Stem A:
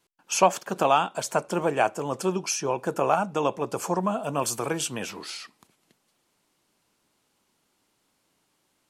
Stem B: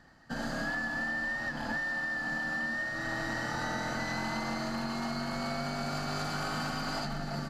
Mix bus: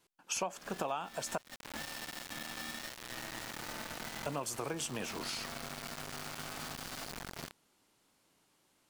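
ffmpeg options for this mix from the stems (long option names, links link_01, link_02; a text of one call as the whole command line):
ffmpeg -i stem1.wav -i stem2.wav -filter_complex "[0:a]volume=-1dB,asplit=3[link_01][link_02][link_03];[link_01]atrim=end=1.38,asetpts=PTS-STARTPTS,afade=type=out:start_time=1.376:duration=0.004:curve=hsin[link_04];[link_02]atrim=start=1.38:end=4.26,asetpts=PTS-STARTPTS,volume=0[link_05];[link_03]atrim=start=4.26,asetpts=PTS-STARTPTS,afade=type=in:duration=0.004:curve=hsin[link_06];[link_04][link_05][link_06]concat=n=3:v=0:a=1,asplit=2[link_07][link_08];[1:a]acrusher=bits=4:mix=0:aa=0.000001,adelay=50,volume=-8.5dB[link_09];[link_08]apad=whole_len=332550[link_10];[link_09][link_10]sidechaincompress=threshold=-24dB:ratio=8:attack=16:release=304[link_11];[link_07][link_11]amix=inputs=2:normalize=0,acompressor=threshold=-35dB:ratio=5" out.wav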